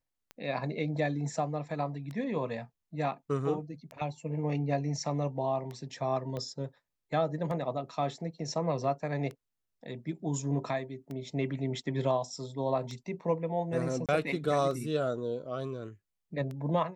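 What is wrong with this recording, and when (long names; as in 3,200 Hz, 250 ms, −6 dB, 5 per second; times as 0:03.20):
scratch tick 33 1/3 rpm −28 dBFS
0:06.37: click −25 dBFS
0:14.06–0:14.09: drop-out 27 ms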